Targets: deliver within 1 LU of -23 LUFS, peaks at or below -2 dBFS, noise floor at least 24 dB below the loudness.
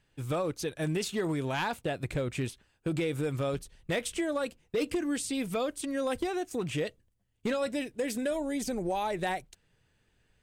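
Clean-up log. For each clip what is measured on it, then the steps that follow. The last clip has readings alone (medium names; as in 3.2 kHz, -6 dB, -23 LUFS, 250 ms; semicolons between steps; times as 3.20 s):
clipped samples 0.7%; clipping level -23.5 dBFS; loudness -33.0 LUFS; peak level -23.5 dBFS; loudness target -23.0 LUFS
-> clip repair -23.5 dBFS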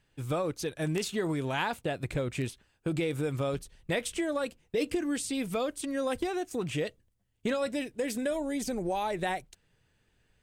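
clipped samples 0.0%; loudness -32.5 LUFS; peak level -14.5 dBFS; loudness target -23.0 LUFS
-> trim +9.5 dB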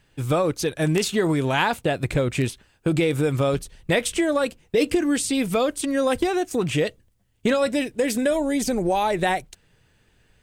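loudness -23.0 LUFS; peak level -5.0 dBFS; noise floor -63 dBFS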